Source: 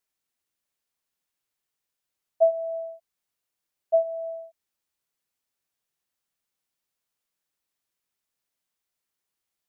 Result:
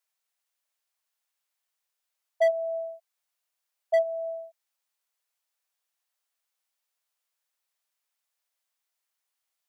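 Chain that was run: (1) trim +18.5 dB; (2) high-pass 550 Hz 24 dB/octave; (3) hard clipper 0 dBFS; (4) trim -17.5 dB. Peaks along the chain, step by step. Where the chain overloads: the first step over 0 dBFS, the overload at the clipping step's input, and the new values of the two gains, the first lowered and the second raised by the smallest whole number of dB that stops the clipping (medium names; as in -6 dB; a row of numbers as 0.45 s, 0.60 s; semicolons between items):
+7.5 dBFS, +6.5 dBFS, 0.0 dBFS, -17.5 dBFS; step 1, 6.5 dB; step 1 +11.5 dB, step 4 -10.5 dB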